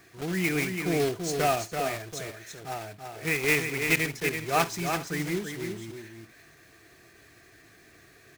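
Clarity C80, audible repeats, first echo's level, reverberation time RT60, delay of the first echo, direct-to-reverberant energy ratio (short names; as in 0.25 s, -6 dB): none, 3, -18.5 dB, none, 54 ms, none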